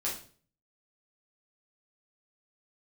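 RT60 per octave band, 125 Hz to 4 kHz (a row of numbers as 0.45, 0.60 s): 0.70, 0.50, 0.50, 0.40, 0.40, 0.40 s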